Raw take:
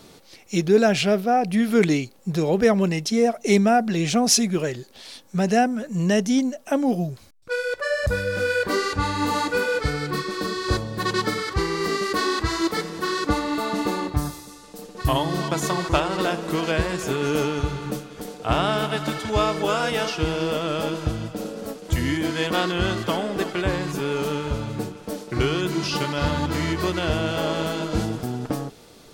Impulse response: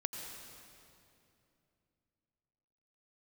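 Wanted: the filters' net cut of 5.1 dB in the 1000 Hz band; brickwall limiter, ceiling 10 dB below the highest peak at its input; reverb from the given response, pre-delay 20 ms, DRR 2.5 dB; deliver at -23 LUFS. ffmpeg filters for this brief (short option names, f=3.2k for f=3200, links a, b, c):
-filter_complex "[0:a]equalizer=f=1k:t=o:g=-7.5,alimiter=limit=-16dB:level=0:latency=1,asplit=2[a][b];[1:a]atrim=start_sample=2205,adelay=20[c];[b][c]afir=irnorm=-1:irlink=0,volume=-3dB[d];[a][d]amix=inputs=2:normalize=0,volume=1.5dB"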